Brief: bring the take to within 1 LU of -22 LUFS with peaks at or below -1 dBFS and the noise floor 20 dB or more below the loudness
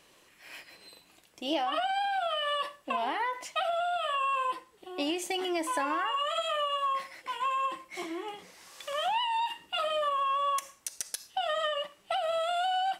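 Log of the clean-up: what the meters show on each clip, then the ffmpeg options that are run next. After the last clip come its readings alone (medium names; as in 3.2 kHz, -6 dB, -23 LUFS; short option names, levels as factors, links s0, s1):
loudness -31.0 LUFS; peak level -16.5 dBFS; loudness target -22.0 LUFS
-> -af "volume=2.82"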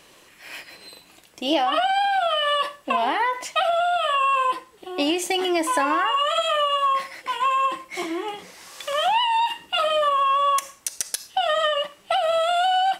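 loudness -22.0 LUFS; peak level -7.5 dBFS; noise floor -53 dBFS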